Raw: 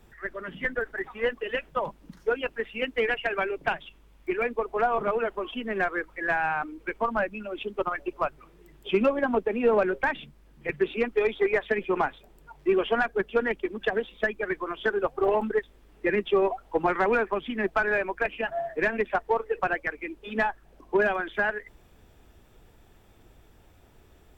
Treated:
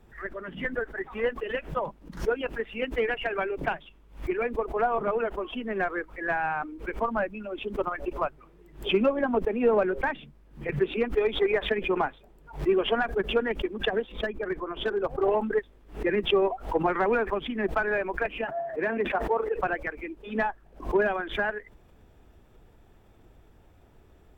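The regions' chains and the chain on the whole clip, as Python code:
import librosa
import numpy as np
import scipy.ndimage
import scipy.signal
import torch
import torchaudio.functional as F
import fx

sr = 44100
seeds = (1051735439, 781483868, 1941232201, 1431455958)

y = fx.chain(x, sr, fx.high_shelf(hz=2000.0, db=-7.5),
    fx.clip_hard(threshold_db=-20.5), at=(14.12, 15.23))
y = fx.chain(y, sr, fx.highpass(hz=200.0, slope=6),
    fx.high_shelf(hz=2300.0, db=-7.5),
    fx.sustainer(db_per_s=67.0), at=(18.44, 19.54))
y = fx.high_shelf(y, sr, hz=2100.0, db=-8.0)
y = fx.pre_swell(y, sr, db_per_s=150.0)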